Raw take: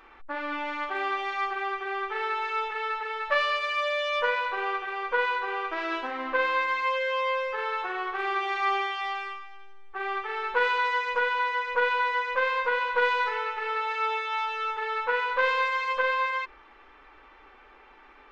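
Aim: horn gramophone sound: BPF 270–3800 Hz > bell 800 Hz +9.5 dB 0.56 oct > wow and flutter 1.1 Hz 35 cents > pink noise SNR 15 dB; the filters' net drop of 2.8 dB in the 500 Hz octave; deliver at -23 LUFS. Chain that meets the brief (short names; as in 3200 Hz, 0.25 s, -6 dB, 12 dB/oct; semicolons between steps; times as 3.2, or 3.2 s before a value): BPF 270–3800 Hz; bell 500 Hz -4.5 dB; bell 800 Hz +9.5 dB 0.56 oct; wow and flutter 1.1 Hz 35 cents; pink noise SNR 15 dB; gain +3 dB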